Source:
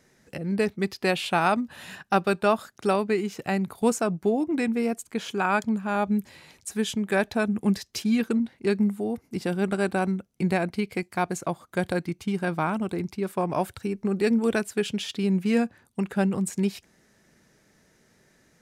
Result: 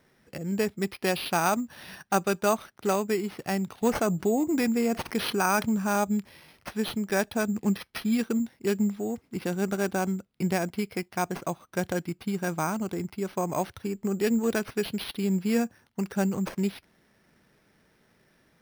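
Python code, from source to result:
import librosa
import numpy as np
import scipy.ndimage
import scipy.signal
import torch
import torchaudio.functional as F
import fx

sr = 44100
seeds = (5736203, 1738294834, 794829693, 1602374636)

y = np.repeat(x[::6], 6)[:len(x)]
y = fx.env_flatten(y, sr, amount_pct=50, at=(3.95, 6.04))
y = y * 10.0 ** (-2.5 / 20.0)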